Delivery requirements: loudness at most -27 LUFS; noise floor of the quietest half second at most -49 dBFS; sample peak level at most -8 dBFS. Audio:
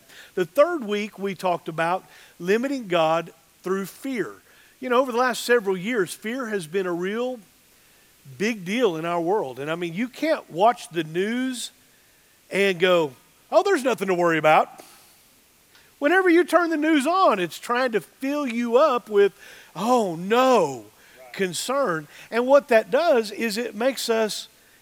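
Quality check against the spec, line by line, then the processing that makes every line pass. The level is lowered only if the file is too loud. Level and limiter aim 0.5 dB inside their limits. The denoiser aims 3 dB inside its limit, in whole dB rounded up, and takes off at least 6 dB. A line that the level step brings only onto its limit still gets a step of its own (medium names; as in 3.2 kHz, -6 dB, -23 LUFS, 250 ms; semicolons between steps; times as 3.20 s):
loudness -22.5 LUFS: fail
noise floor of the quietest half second -57 dBFS: pass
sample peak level -4.5 dBFS: fail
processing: trim -5 dB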